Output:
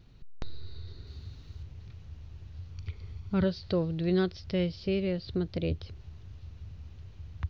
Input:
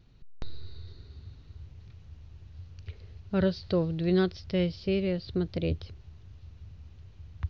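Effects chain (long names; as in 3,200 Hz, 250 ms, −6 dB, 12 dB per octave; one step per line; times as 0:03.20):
0:01.07–0:01.63: high-shelf EQ 3,700 Hz +7.5 dB
0:02.74–0:03.44: comb filter 0.9 ms, depth 46%
in parallel at −0.5 dB: downward compressor, threshold −40 dBFS, peak gain reduction 18.5 dB
on the sum: level −3 dB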